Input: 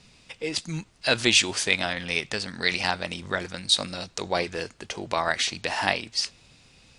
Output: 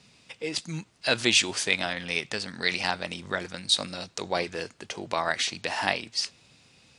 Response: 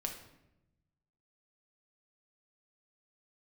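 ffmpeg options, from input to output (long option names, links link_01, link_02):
-af "highpass=96,volume=-2dB"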